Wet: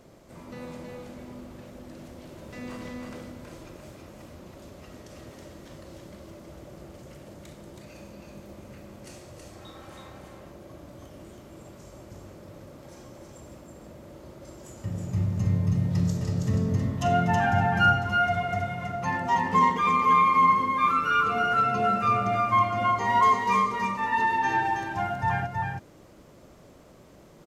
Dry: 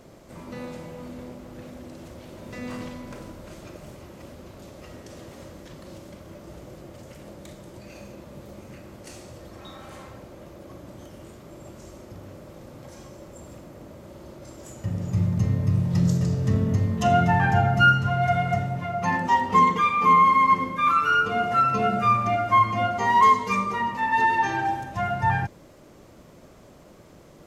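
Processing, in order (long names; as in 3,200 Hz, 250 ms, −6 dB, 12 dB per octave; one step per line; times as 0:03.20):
single-tap delay 323 ms −3.5 dB
level −4 dB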